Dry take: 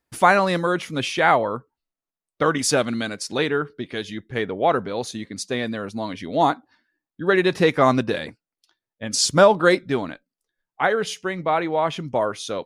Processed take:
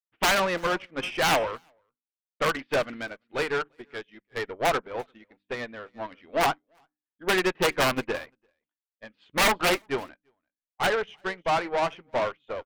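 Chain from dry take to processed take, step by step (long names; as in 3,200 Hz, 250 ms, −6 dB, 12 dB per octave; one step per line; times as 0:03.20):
Butterworth low-pass 3,100 Hz 48 dB per octave
wrap-around overflow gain 9 dB
parametric band 110 Hz −14.5 dB 2.7 octaves
mains-hum notches 50/100/150/200/250/300 Hz
tube saturation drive 27 dB, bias 0.45
single-tap delay 342 ms −15.5 dB
expander for the loud parts 2.5 to 1, over −51 dBFS
level +8.5 dB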